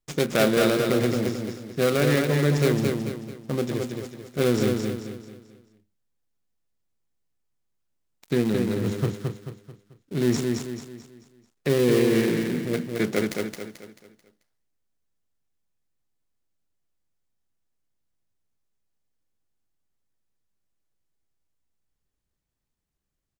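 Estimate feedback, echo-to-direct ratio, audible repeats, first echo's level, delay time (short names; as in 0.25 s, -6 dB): 40%, -3.0 dB, 4, -4.0 dB, 0.219 s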